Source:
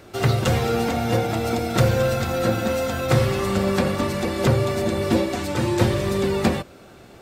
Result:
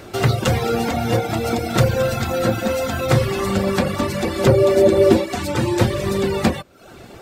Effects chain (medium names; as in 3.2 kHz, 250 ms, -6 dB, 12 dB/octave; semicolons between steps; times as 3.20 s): reverb removal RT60 0.61 s; in parallel at 0 dB: compression, threshold -33 dBFS, peak gain reduction 18.5 dB; 4.46–5.12 s: on the sum: small resonant body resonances 380/560 Hz, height 10 dB -> 13 dB; trim +1.5 dB